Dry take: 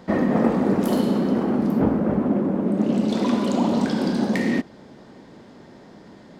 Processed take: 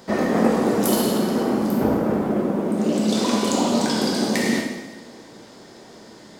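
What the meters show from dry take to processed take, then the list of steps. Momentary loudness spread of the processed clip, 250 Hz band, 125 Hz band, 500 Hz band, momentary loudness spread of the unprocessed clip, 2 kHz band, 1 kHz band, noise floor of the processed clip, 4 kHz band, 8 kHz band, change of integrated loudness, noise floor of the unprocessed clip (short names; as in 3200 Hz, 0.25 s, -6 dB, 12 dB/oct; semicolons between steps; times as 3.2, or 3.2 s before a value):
3 LU, -0.5 dB, -2.0 dB, +2.5 dB, 3 LU, +3.5 dB, +3.0 dB, -45 dBFS, +9.0 dB, n/a, +0.5 dB, -47 dBFS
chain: tone controls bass -6 dB, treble +12 dB; two-slope reverb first 0.93 s, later 2.6 s, DRR -0.5 dB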